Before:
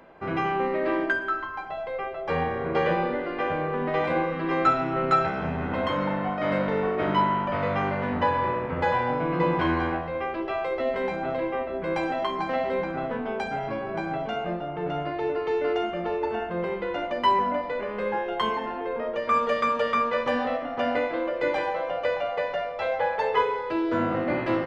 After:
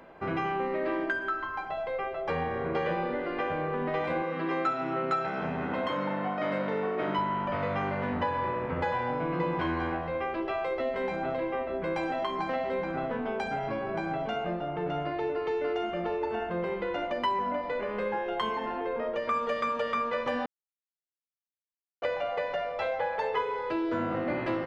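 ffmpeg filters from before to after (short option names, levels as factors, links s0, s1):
-filter_complex "[0:a]asettb=1/sr,asplit=3[s0][s1][s2];[s0]atrim=end=4.224[s3];[s1]atrim=start=4.22:end=7.19,asetpts=PTS-STARTPTS,afade=t=in:d=0.004:c=qsin,afade=t=out:st=2.966:d=0.004:c=qsin,highpass=160[s4];[s2]atrim=start=7.186[s5];[s3][s4]acrossfade=d=0.004:c1=hsin:c2=qsin[s6];[s6][s5]acrossfade=d=0.004:c1=qsin:c2=hsin,asplit=3[s7][s8][s9];[s7]atrim=end=20.46,asetpts=PTS-STARTPTS,afade=t=out:st=20.456:d=0.004:c=hsin[s10];[s8]atrim=start=20.46:end=22.02,asetpts=PTS-STARTPTS,volume=0[s11];[s9]atrim=start=22.02,asetpts=PTS-STARTPTS,afade=t=in:d=0.004:c=hsin[s12];[s10][s11][s12]concat=n=3:v=0:a=1,acompressor=threshold=0.0355:ratio=2.5"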